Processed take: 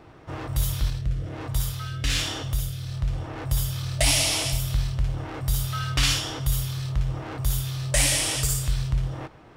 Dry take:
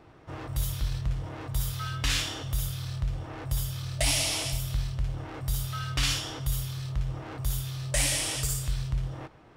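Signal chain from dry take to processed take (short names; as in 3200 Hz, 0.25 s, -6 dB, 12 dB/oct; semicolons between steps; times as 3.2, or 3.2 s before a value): 0.9–3.36 rotary speaker horn 1.2 Hz; gain +5 dB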